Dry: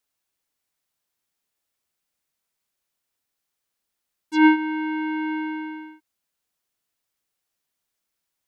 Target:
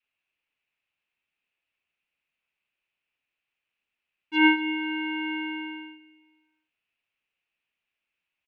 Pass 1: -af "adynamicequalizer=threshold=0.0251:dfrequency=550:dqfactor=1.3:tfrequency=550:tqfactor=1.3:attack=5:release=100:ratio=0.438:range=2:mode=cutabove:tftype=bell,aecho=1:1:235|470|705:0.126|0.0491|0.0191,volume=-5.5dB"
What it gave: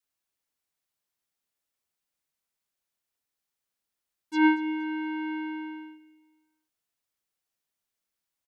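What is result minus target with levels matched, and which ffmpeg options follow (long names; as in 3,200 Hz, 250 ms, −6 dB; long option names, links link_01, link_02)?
2,000 Hz band −4.0 dB
-af "adynamicequalizer=threshold=0.0251:dfrequency=550:dqfactor=1.3:tfrequency=550:tqfactor=1.3:attack=5:release=100:ratio=0.438:range=2:mode=cutabove:tftype=bell,lowpass=frequency=2600:width_type=q:width=6.5,aecho=1:1:235|470|705:0.126|0.0491|0.0191,volume=-5.5dB"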